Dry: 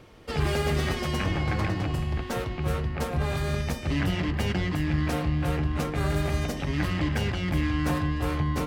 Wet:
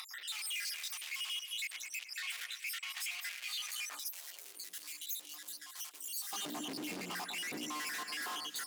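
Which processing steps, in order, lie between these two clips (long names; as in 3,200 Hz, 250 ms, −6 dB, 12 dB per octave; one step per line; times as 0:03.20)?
time-frequency cells dropped at random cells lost 81%
hard clipping −30.5 dBFS, distortion −7 dB
mains-hum notches 60/120/180/240/300 Hz
tube saturation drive 54 dB, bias 0.6
high-pass filter 140 Hz
high-shelf EQ 4,000 Hz +8 dB
delay that swaps between a low-pass and a high-pass 106 ms, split 1,800 Hz, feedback 51%, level −7.5 dB
upward compression, threshold −45 dBFS
high-pass filter sweep 2,300 Hz → 260 Hz, 0:03.66–0:04.64
brickwall limiter −41 dBFS, peak gain reduction 6.5 dB
0:03.99–0:06.33: first difference
level +10 dB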